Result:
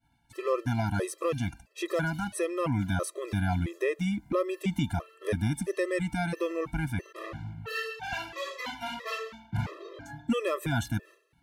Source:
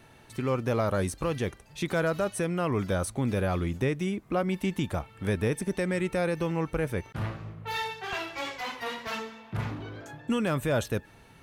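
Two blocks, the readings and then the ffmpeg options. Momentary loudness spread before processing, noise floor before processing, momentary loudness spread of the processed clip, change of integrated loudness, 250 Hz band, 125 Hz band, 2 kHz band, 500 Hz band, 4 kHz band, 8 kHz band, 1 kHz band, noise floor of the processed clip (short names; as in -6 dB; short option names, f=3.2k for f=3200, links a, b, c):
8 LU, -55 dBFS, 8 LU, -1.5 dB, -1.5 dB, -1.0 dB, -0.5 dB, -2.0 dB, -1.5 dB, -1.5 dB, -1.5 dB, -67 dBFS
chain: -af "aeval=exprs='val(0)+0.000891*(sin(2*PI*60*n/s)+sin(2*PI*2*60*n/s)/2+sin(2*PI*3*60*n/s)/3+sin(2*PI*4*60*n/s)/4+sin(2*PI*5*60*n/s)/5)':c=same,agate=range=-33dB:threshold=-43dB:ratio=3:detection=peak,afftfilt=real='re*gt(sin(2*PI*1.5*pts/sr)*(1-2*mod(floor(b*sr/1024/340),2)),0)':imag='im*gt(sin(2*PI*1.5*pts/sr)*(1-2*mod(floor(b*sr/1024/340),2)),0)':win_size=1024:overlap=0.75,volume=2dB"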